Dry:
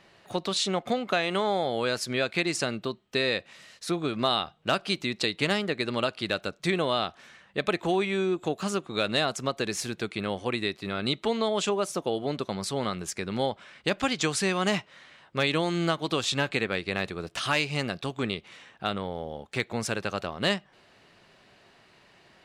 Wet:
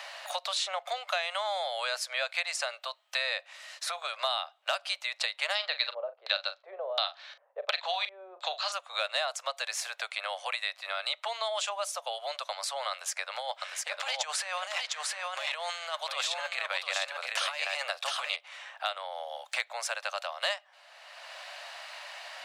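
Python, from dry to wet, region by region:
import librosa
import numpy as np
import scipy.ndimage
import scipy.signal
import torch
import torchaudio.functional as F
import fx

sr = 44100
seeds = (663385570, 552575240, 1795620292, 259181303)

y = fx.chain(x, sr, fx.highpass(hz=310.0, slope=12),
    fx.filter_lfo_lowpass(shape='square', hz=1.4, low_hz=400.0, high_hz=4200.0, q=4.3),
    fx.doubler(ms=40.0, db=-12), at=(5.55, 8.72))
y = fx.chain(y, sr, fx.over_compress(threshold_db=-29.0, ratio=-0.5),
    fx.echo_single(ms=705, db=-4.0), at=(12.91, 18.36))
y = scipy.signal.sosfilt(scipy.signal.butter(12, 570.0, 'highpass', fs=sr, output='sos'), y)
y = fx.band_squash(y, sr, depth_pct=70)
y = y * librosa.db_to_amplitude(-2.0)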